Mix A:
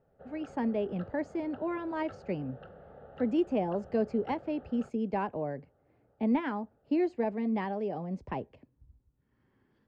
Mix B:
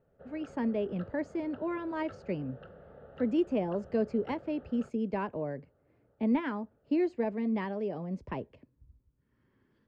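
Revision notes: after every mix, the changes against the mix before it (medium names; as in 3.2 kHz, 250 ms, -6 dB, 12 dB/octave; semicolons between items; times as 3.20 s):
master: add peaking EQ 780 Hz -8.5 dB 0.24 oct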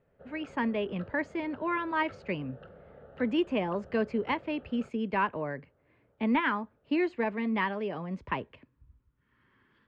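speech: add high-order bell 1.9 kHz +11 dB 2.3 oct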